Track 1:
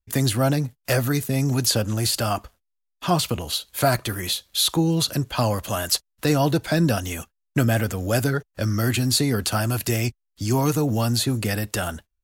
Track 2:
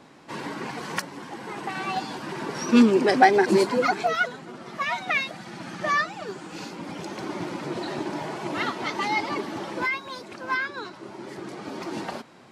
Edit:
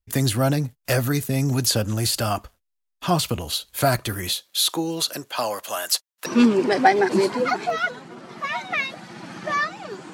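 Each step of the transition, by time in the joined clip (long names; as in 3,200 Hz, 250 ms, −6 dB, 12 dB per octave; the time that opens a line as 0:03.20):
track 1
0:04.33–0:06.26: high-pass filter 270 Hz → 690 Hz
0:06.26: continue with track 2 from 0:02.63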